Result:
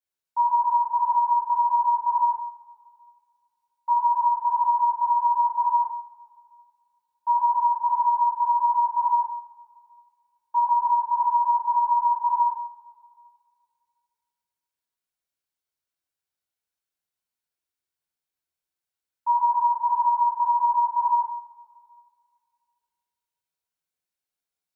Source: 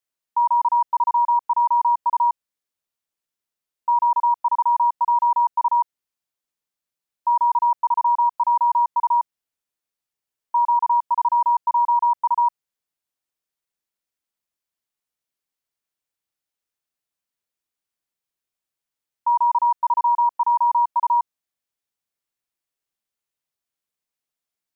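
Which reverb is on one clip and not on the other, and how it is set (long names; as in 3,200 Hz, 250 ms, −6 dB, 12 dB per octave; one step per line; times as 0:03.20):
coupled-rooms reverb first 0.54 s, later 2.2 s, from −20 dB, DRR −9 dB
level −12 dB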